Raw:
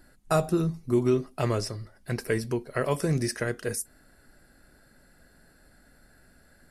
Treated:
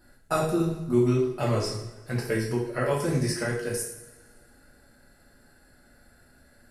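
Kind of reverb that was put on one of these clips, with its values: two-slope reverb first 0.61 s, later 1.9 s, from -18 dB, DRR -5 dB; gain -5 dB

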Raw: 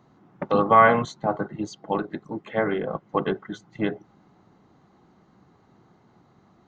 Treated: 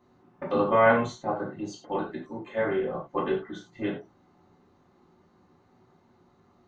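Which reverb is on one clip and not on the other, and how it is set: non-linear reverb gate 0.13 s falling, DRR -6 dB; gain -10 dB

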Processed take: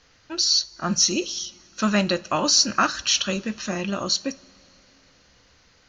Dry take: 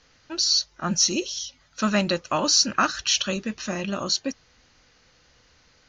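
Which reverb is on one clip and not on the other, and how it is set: two-slope reverb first 0.31 s, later 3.9 s, from -22 dB, DRR 13.5 dB; gain +1 dB

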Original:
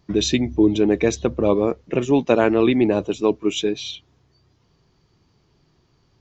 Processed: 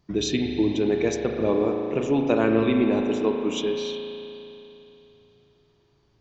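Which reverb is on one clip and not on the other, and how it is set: spring tank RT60 3.1 s, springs 36 ms, chirp 25 ms, DRR 2 dB; gain -6 dB

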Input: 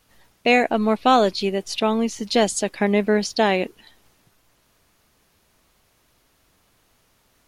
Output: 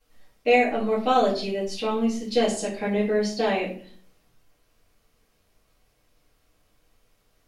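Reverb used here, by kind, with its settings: shoebox room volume 43 m³, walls mixed, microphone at 2.2 m; gain -17 dB

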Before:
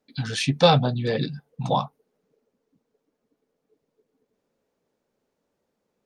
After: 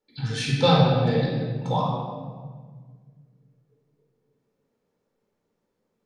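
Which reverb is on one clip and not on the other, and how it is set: shoebox room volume 1800 m³, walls mixed, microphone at 4.3 m; gain -8 dB

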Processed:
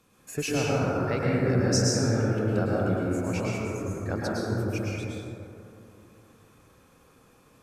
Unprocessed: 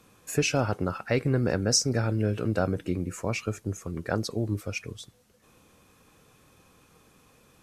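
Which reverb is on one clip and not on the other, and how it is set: plate-style reverb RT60 2.9 s, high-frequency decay 0.3×, pre-delay 95 ms, DRR -6 dB; gain -6 dB

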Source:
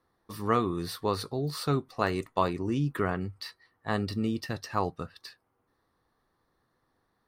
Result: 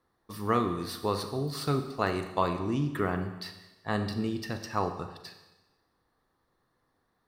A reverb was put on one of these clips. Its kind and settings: Schroeder reverb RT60 1.1 s, combs from 30 ms, DRR 7.5 dB; gain -1 dB

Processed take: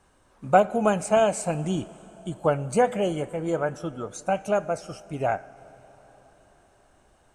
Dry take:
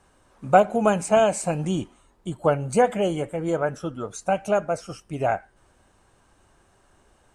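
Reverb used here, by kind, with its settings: plate-style reverb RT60 4.8 s, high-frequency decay 0.95×, DRR 18.5 dB; gain -2 dB

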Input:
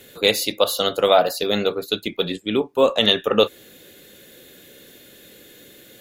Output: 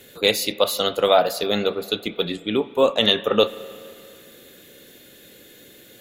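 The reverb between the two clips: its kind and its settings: spring tank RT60 2.5 s, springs 35/53 ms, chirp 70 ms, DRR 16 dB; gain -1 dB

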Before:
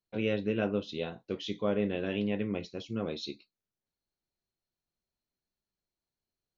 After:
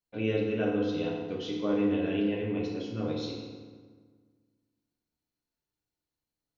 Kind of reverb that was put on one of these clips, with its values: FDN reverb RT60 1.6 s, low-frequency decay 1.25×, high-frequency decay 0.65×, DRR -3 dB; gain -4 dB

